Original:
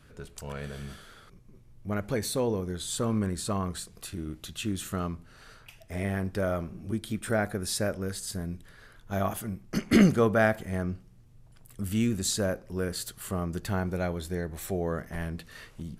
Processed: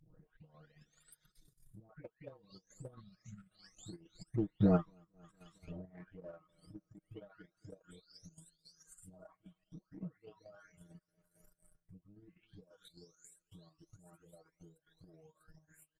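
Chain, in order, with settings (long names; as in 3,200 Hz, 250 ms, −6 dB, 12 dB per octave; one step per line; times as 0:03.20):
every frequency bin delayed by itself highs late, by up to 822 ms
source passing by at 0:04.78, 23 m/s, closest 2.3 metres
on a send: repeating echo 226 ms, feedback 53%, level −13 dB
on the sum: reverb reduction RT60 1.9 s
treble cut that deepens with the level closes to 1,000 Hz, closed at −49.5 dBFS
in parallel at −11 dB: dead-zone distortion −56 dBFS
on the sum: transient designer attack +10 dB, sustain −8 dB
healed spectral selection 0:03.03–0:03.51, 230–1,300 Hz after
square-wave tremolo 3.7 Hz, depth 60%, duty 65%
comb filter 6.4 ms, depth 58%
upward compression, threshold −52 dBFS
level +2 dB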